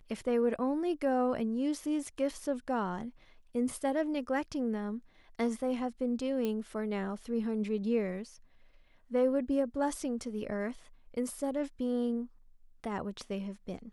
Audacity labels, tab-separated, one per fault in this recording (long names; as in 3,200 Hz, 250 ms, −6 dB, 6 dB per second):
6.450000	6.450000	click −21 dBFS